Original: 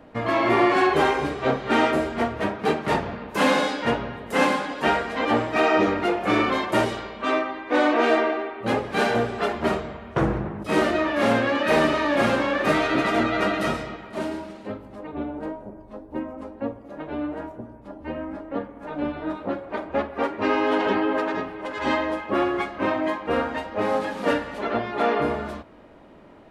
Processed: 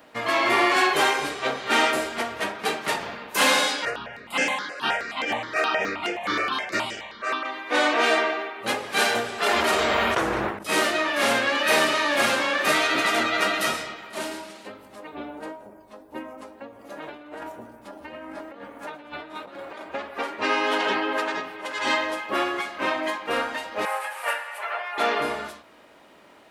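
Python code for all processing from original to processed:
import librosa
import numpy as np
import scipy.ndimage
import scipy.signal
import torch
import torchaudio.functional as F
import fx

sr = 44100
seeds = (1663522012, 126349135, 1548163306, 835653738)

y = fx.chain(x, sr, fx.air_absorb(metres=56.0),
    fx.phaser_held(hz=9.5, low_hz=910.0, high_hz=3900.0), at=(3.85, 7.45))
y = fx.chain(y, sr, fx.peak_eq(hz=160.0, db=-12.5, octaves=0.43),
    fx.env_flatten(amount_pct=100), at=(9.46, 10.59))
y = fx.chain(y, sr, fx.over_compress(threshold_db=-35.0, ratio=-1.0),
    fx.echo_feedback(ms=120, feedback_pct=53, wet_db=-17.0), at=(16.79, 19.81))
y = fx.chain(y, sr, fx.highpass(hz=640.0, slope=24),
    fx.band_shelf(hz=4800.0, db=-11.5, octaves=1.3), at=(23.85, 24.98))
y = fx.tilt_eq(y, sr, slope=4.0)
y = fx.end_taper(y, sr, db_per_s=100.0)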